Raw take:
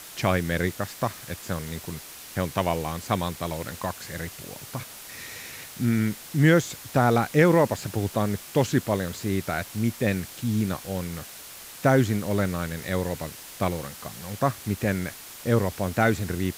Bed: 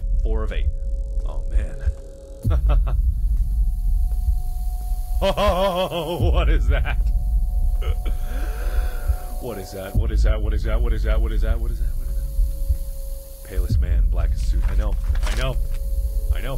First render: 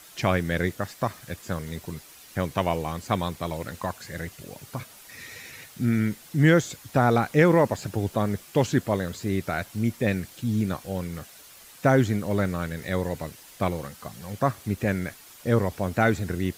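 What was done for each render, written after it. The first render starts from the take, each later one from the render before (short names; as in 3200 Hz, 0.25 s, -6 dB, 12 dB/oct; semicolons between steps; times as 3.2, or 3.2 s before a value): denoiser 8 dB, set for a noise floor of -43 dBFS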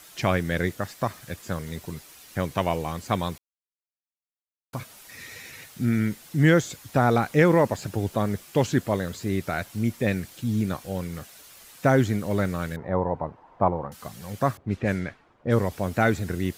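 3.38–4.73 mute; 12.76–13.92 synth low-pass 920 Hz, resonance Q 3.5; 14.57–15.71 low-pass opened by the level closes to 660 Hz, open at -18.5 dBFS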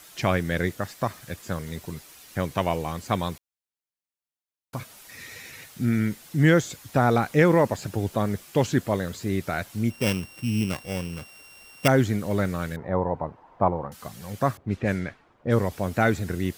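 9.9–11.88 sample sorter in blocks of 16 samples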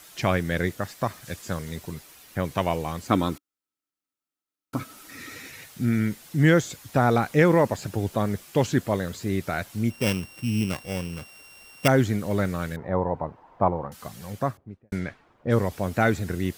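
1.24–2.44 bell 6400 Hz +5.5 dB -> -5 dB 1.8 oct; 3.1–5.48 small resonant body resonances 290/1300 Hz, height 15 dB; 14.22–14.92 studio fade out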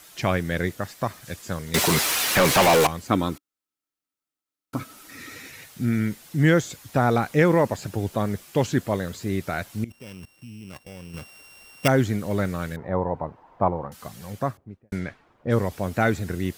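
1.74–2.87 overdrive pedal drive 38 dB, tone 6900 Hz, clips at -9.5 dBFS; 9.84–11.14 level quantiser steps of 20 dB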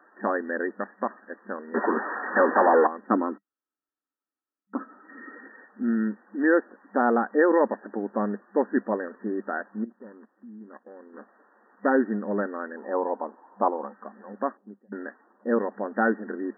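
notch 660 Hz, Q 12; FFT band-pass 200–1900 Hz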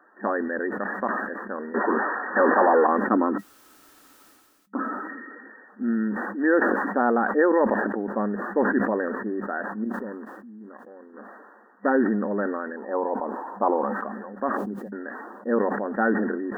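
sustainer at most 31 dB/s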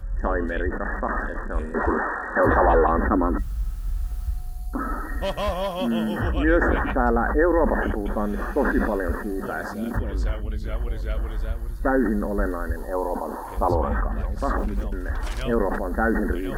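add bed -7 dB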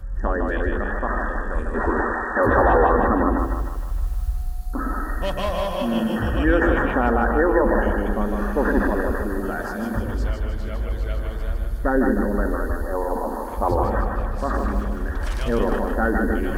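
split-band echo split 480 Hz, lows 0.112 s, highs 0.154 s, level -4 dB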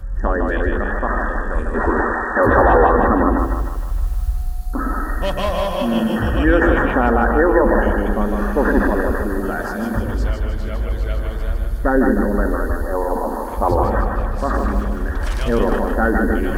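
gain +4 dB; limiter -2 dBFS, peak gain reduction 2 dB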